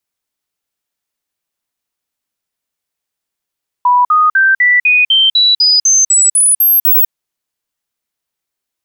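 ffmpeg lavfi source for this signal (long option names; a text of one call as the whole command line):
ffmpeg -f lavfi -i "aevalsrc='0.501*clip(min(mod(t,0.25),0.2-mod(t,0.25))/0.005,0,1)*sin(2*PI*984*pow(2,floor(t/0.25)/3)*mod(t,0.25))':duration=3.25:sample_rate=44100" out.wav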